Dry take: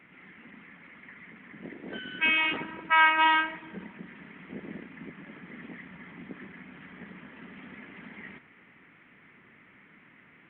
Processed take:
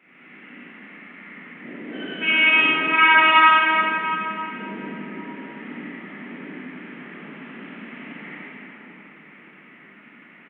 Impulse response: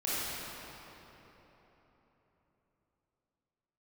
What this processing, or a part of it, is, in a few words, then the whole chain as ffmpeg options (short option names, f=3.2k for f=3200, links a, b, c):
PA in a hall: -filter_complex "[0:a]highpass=f=170:w=0.5412,highpass=f=170:w=1.3066,equalizer=f=2.7k:t=o:w=0.23:g=4,aecho=1:1:90:0.562[a];[1:a]atrim=start_sample=2205[b];[a][b]afir=irnorm=-1:irlink=0,volume=-1dB"